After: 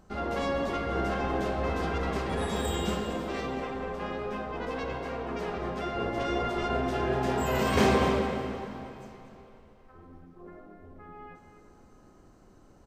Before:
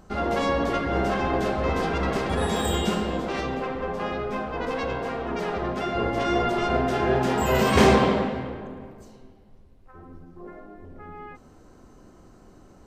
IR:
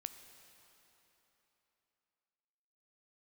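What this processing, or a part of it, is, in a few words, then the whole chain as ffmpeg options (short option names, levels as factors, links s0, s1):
cave: -filter_complex "[0:a]aecho=1:1:239:0.282[s0];[1:a]atrim=start_sample=2205[s1];[s0][s1]afir=irnorm=-1:irlink=0,volume=0.75"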